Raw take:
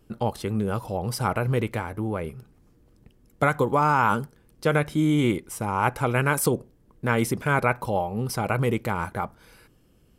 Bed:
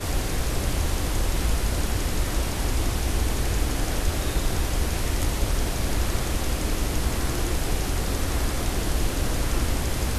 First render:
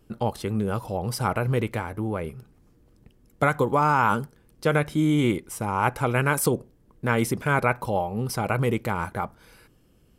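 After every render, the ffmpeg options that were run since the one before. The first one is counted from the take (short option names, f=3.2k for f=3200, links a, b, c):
-af anull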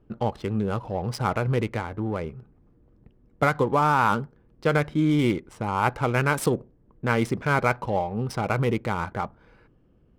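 -af "adynamicsmooth=sensitivity=7.5:basefreq=1.7k"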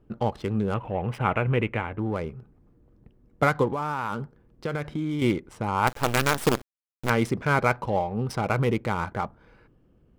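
-filter_complex "[0:a]asettb=1/sr,asplit=3[a][b][c];[a]atrim=end=0.744[d];[b]atrim=start=0.74:end=1.99,asetpts=PTS-STARTPTS,afade=t=in:d=0.004:c=qsin,afade=t=out:st=1.246:d=0.004:c=qsin,highshelf=f=3.6k:t=q:w=3:g=-10[e];[c]atrim=start=1.986[f];[d][e]acrossfade=d=0.004:c1=hsin:c2=qsin[g];[g][f]acrossfade=d=0.004:c1=qsin:c2=hsin,asettb=1/sr,asplit=3[h][i][j];[h]atrim=end=3.694[k];[i]atrim=start=3.69:end=5.22,asetpts=PTS-STARTPTS,afade=t=in:d=0.004:c=qsin,afade=t=out:st=1.526:d=0.004:c=qsin,acompressor=threshold=-25dB:ratio=6:attack=3.2:release=140:knee=1:detection=peak[l];[j]atrim=start=5.216[m];[k][l]acrossfade=d=0.004:c1=hsin:c2=qsin[n];[n][m]acrossfade=d=0.004:c1=qsin:c2=hsin,asettb=1/sr,asplit=3[o][p][q];[o]atrim=end=5.874[r];[p]atrim=start=5.87:end=7.1,asetpts=PTS-STARTPTS,afade=t=in:d=0.004:c=qsin,afade=t=out:st=1.226:d=0.004:c=qsin,acrusher=bits=4:dc=4:mix=0:aa=0.000001[s];[q]atrim=start=7.096[t];[r][s]acrossfade=d=0.004:c1=hsin:c2=qsin[u];[u][t]acrossfade=d=0.004:c1=qsin:c2=hsin"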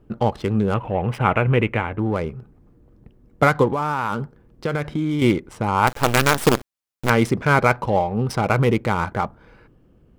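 -af "volume=6dB,alimiter=limit=-3dB:level=0:latency=1"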